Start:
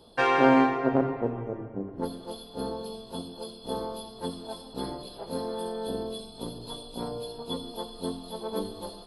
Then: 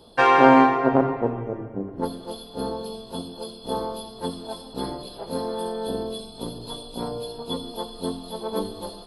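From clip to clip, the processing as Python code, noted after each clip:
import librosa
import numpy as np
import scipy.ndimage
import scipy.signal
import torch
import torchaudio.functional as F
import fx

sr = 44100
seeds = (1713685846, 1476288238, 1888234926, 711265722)

y = fx.dynamic_eq(x, sr, hz=970.0, q=1.4, threshold_db=-37.0, ratio=4.0, max_db=5)
y = y * librosa.db_to_amplitude(4.0)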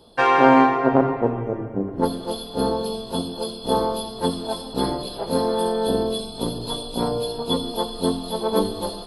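y = fx.rider(x, sr, range_db=4, speed_s=2.0)
y = y * librosa.db_to_amplitude(3.0)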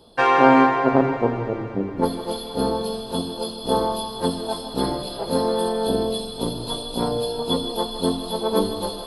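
y = fx.echo_thinned(x, sr, ms=158, feedback_pct=79, hz=420.0, wet_db=-12.5)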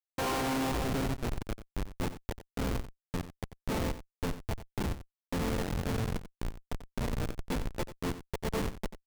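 y = fx.schmitt(x, sr, flips_db=-18.0)
y = y + 10.0 ** (-13.0 / 20.0) * np.pad(y, (int(90 * sr / 1000.0), 0))[:len(y)]
y = y * librosa.db_to_amplitude(-8.5)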